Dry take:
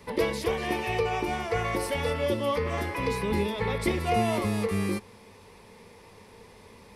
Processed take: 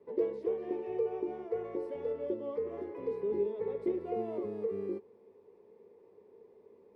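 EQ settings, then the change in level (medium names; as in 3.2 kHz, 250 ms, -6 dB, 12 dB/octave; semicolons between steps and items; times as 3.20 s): band-pass filter 400 Hz, Q 4.5; 0.0 dB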